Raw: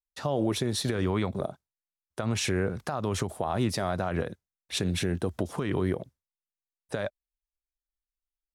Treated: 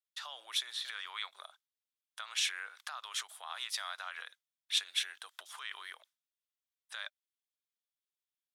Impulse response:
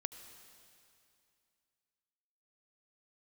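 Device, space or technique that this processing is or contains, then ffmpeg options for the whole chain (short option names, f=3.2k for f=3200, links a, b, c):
headphones lying on a table: -filter_complex "[0:a]highpass=f=1.2k:w=0.5412,highpass=f=1.2k:w=1.3066,equalizer=f=3.4k:t=o:w=0.39:g=8.5,asettb=1/sr,asplit=3[a][b][c];[a]atrim=end=0.724[d];[b]atrim=start=0.72:end=1.17,asetpts=PTS-STARTPTS,afade=t=in:d=0.004:c=qsin,afade=t=out:st=0.446:d=0.004:c=qsin,acrossover=split=3200[e][f];[f]acompressor=threshold=-41dB:ratio=4:attack=1:release=60[g];[e][g]amix=inputs=2:normalize=0[h];[c]atrim=start=1.166[i];[d][h]acrossfade=d=0.004:c1=hsin:c2=qsin[j];[j][i]acrossfade=d=0.004:c1=qsin:c2=hsin,volume=-3.5dB"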